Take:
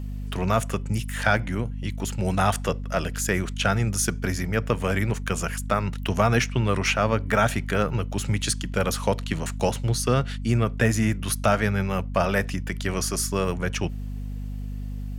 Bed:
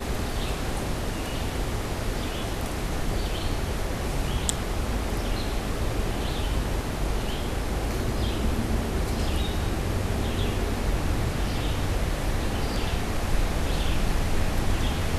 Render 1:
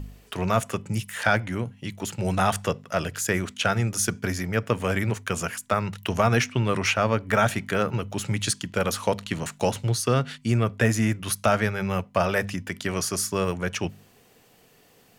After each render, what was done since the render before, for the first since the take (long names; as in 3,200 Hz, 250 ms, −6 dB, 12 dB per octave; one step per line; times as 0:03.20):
hum removal 50 Hz, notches 5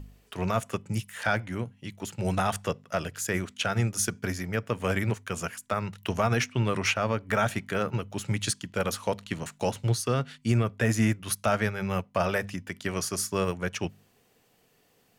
brickwall limiter −13 dBFS, peak gain reduction 4.5 dB
expander for the loud parts 1.5 to 1, over −36 dBFS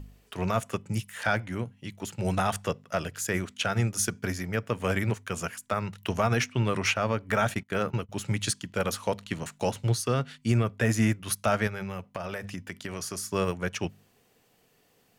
0:07.41–0:08.09: noise gate −39 dBFS, range −22 dB
0:11.67–0:13.32: downward compressor 10 to 1, threshold −30 dBFS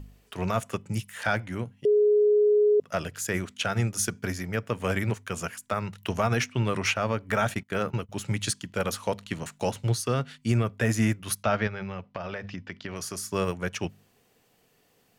0:01.85–0:02.80: beep over 418 Hz −17 dBFS
0:11.43–0:12.96: inverse Chebyshev low-pass filter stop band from 11,000 Hz, stop band 50 dB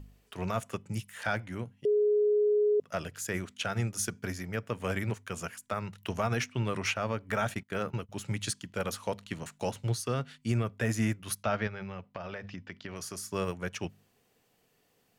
level −5 dB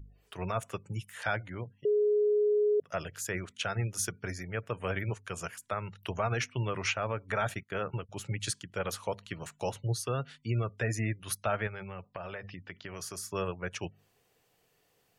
gate on every frequency bin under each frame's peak −30 dB strong
parametric band 230 Hz −8.5 dB 0.57 octaves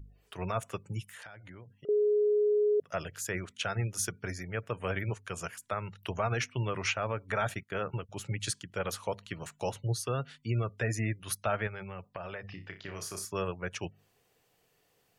0:01.04–0:01.89: downward compressor 20 to 1, threshold −44 dBFS
0:12.46–0:13.25: flutter between parallel walls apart 5.3 metres, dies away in 0.26 s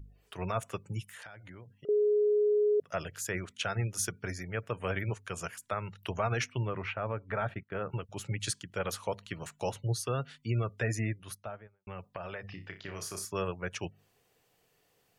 0:06.58–0:07.90: high-frequency loss of the air 490 metres
0:10.89–0:11.87: fade out and dull